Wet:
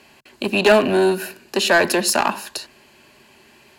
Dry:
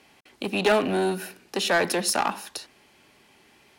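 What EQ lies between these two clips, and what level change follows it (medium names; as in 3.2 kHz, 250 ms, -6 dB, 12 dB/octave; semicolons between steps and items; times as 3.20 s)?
rippled EQ curve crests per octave 1.4, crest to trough 6 dB; +6.0 dB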